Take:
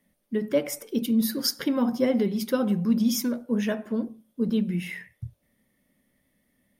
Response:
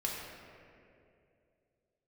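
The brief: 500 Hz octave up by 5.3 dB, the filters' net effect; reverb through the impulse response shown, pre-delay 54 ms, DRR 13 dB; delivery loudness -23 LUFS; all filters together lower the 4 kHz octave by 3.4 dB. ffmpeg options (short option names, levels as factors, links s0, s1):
-filter_complex "[0:a]equalizer=f=500:t=o:g=6,equalizer=f=4000:t=o:g=-5,asplit=2[s0][s1];[1:a]atrim=start_sample=2205,adelay=54[s2];[s1][s2]afir=irnorm=-1:irlink=0,volume=0.141[s3];[s0][s3]amix=inputs=2:normalize=0,volume=1.12"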